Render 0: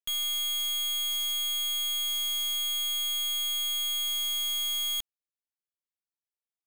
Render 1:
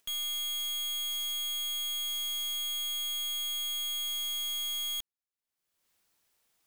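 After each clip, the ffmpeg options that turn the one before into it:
ffmpeg -i in.wav -af "acompressor=mode=upward:threshold=-49dB:ratio=2.5,volume=-4dB" out.wav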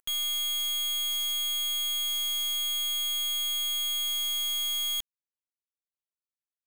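ffmpeg -i in.wav -af "acrusher=bits=9:mix=0:aa=0.000001,volume=4.5dB" out.wav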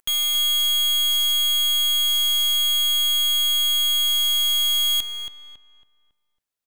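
ffmpeg -i in.wav -filter_complex "[0:a]asplit=2[link_01][link_02];[link_02]adelay=276,lowpass=frequency=2400:poles=1,volume=-5.5dB,asplit=2[link_03][link_04];[link_04]adelay=276,lowpass=frequency=2400:poles=1,volume=0.39,asplit=2[link_05][link_06];[link_06]adelay=276,lowpass=frequency=2400:poles=1,volume=0.39,asplit=2[link_07][link_08];[link_08]adelay=276,lowpass=frequency=2400:poles=1,volume=0.39,asplit=2[link_09][link_10];[link_10]adelay=276,lowpass=frequency=2400:poles=1,volume=0.39[link_11];[link_01][link_03][link_05][link_07][link_09][link_11]amix=inputs=6:normalize=0,volume=8dB" out.wav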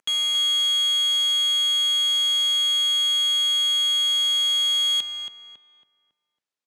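ffmpeg -i in.wav -af "highpass=180,lowpass=6600" out.wav

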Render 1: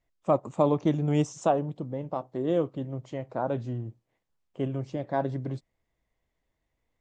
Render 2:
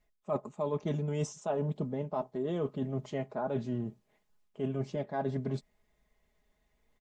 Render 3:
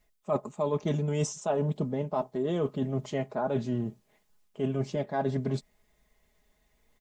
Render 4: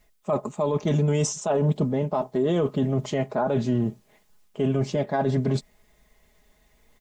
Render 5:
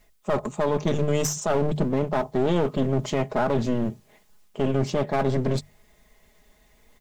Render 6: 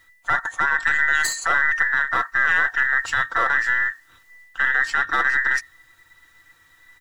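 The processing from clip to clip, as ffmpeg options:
ffmpeg -i in.wav -af "aecho=1:1:4.8:0.71,areverse,acompressor=threshold=-33dB:ratio=10,areverse,volume=3.5dB" out.wav
ffmpeg -i in.wav -af "highshelf=frequency=4200:gain=6,volume=4dB" out.wav
ffmpeg -i in.wav -af "alimiter=limit=-23dB:level=0:latency=1:release=15,volume=8dB" out.wav
ffmpeg -i in.wav -af "aeval=exprs='clip(val(0),-1,0.0299)':channel_layout=same,bandreject=frequency=50:width_type=h:width=6,bandreject=frequency=100:width_type=h:width=6,bandreject=frequency=150:width_type=h:width=6,volume=3dB" out.wav
ffmpeg -i in.wav -af "afftfilt=real='real(if(between(b,1,1012),(2*floor((b-1)/92)+1)*92-b,b),0)':imag='imag(if(between(b,1,1012),(2*floor((b-1)/92)+1)*92-b,b),0)*if(between(b,1,1012),-1,1)':win_size=2048:overlap=0.75,volume=2.5dB" out.wav

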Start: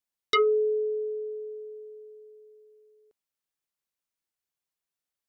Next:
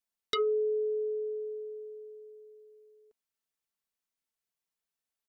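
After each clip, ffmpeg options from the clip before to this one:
ffmpeg -i in.wav -af "acompressor=threshold=-31dB:ratio=2,aecho=1:1:4.5:0.41,volume=-2.5dB" out.wav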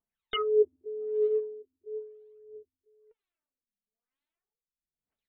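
ffmpeg -i in.wav -af "aphaser=in_gain=1:out_gain=1:delay=4.9:decay=0.73:speed=0.39:type=triangular,afftfilt=real='re*lt(b*sr/1024,300*pow(4400/300,0.5+0.5*sin(2*PI*1*pts/sr)))':imag='im*lt(b*sr/1024,300*pow(4400/300,0.5+0.5*sin(2*PI*1*pts/sr)))':win_size=1024:overlap=0.75" out.wav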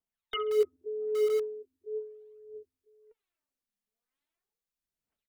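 ffmpeg -i in.wav -filter_complex "[0:a]dynaudnorm=framelen=430:gausssize=3:maxgain=5dB,acrossover=split=280|1100[link_01][link_02][link_03];[link_01]aeval=exprs='(mod(79.4*val(0)+1,2)-1)/79.4':channel_layout=same[link_04];[link_03]aecho=1:1:67|134|201|268:0.141|0.072|0.0367|0.0187[link_05];[link_04][link_02][link_05]amix=inputs=3:normalize=0,volume=-3.5dB" out.wav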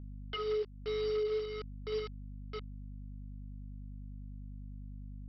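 ffmpeg -i in.wav -af "aresample=11025,acrusher=bits=6:mix=0:aa=0.000001,aresample=44100,aeval=exprs='val(0)+0.00631*(sin(2*PI*50*n/s)+sin(2*PI*2*50*n/s)/2+sin(2*PI*3*50*n/s)/3+sin(2*PI*4*50*n/s)/4+sin(2*PI*5*50*n/s)/5)':channel_layout=same,alimiter=level_in=3.5dB:limit=-24dB:level=0:latency=1:release=287,volume=-3.5dB" out.wav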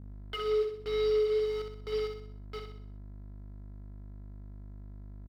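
ffmpeg -i in.wav -af "aeval=exprs='sgn(val(0))*max(abs(val(0))-0.00168,0)':channel_layout=same,aecho=1:1:63|126|189|252|315|378:0.501|0.236|0.111|0.052|0.0245|0.0115,volume=2dB" out.wav

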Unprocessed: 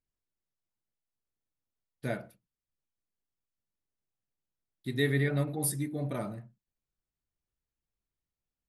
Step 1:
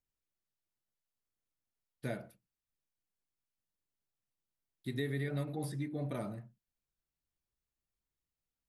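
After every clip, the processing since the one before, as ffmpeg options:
ffmpeg -i in.wav -filter_complex "[0:a]acrossover=split=780|2300|4600[link_01][link_02][link_03][link_04];[link_01]acompressor=threshold=-31dB:ratio=4[link_05];[link_02]acompressor=threshold=-46dB:ratio=4[link_06];[link_03]acompressor=threshold=-50dB:ratio=4[link_07];[link_04]acompressor=threshold=-54dB:ratio=4[link_08];[link_05][link_06][link_07][link_08]amix=inputs=4:normalize=0,volume=-2.5dB" out.wav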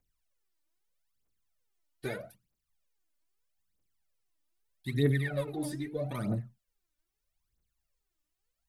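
ffmpeg -i in.wav -af "aphaser=in_gain=1:out_gain=1:delay=3.5:decay=0.76:speed=0.79:type=triangular,volume=2dB" out.wav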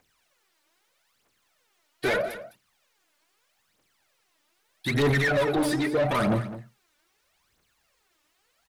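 ffmpeg -i in.wav -filter_complex "[0:a]asplit=2[link_01][link_02];[link_02]highpass=frequency=720:poles=1,volume=30dB,asoftclip=type=tanh:threshold=-15dB[link_03];[link_01][link_03]amix=inputs=2:normalize=0,lowpass=frequency=2700:poles=1,volume=-6dB,aecho=1:1:208:0.2" out.wav

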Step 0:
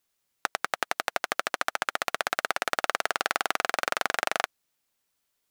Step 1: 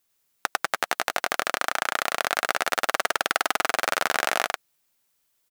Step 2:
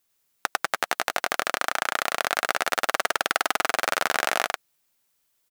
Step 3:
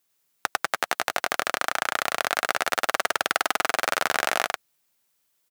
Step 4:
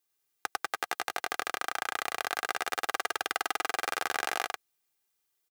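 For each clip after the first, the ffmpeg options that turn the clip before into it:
ffmpeg -i in.wav -filter_complex "[0:a]highshelf=frequency=9400:gain=5.5,asplit=2[link_01][link_02];[link_02]aecho=0:1:101:0.708[link_03];[link_01][link_03]amix=inputs=2:normalize=0,volume=1.5dB" out.wav
ffmpeg -i in.wav -af anull out.wav
ffmpeg -i in.wav -af "highpass=frequency=83:width=0.5412,highpass=frequency=83:width=1.3066" out.wav
ffmpeg -i in.wav -af "aecho=1:1:2.5:0.53,volume=-8.5dB" out.wav

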